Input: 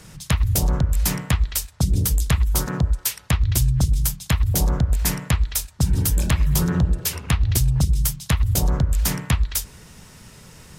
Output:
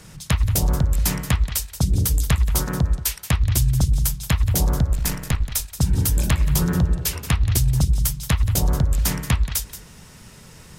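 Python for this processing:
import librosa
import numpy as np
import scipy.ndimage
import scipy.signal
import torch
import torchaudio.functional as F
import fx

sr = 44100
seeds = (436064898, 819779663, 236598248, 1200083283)

p1 = fx.halfwave_gain(x, sr, db=-7.0, at=(4.93, 5.55))
y = p1 + fx.echo_single(p1, sr, ms=178, db=-13.5, dry=0)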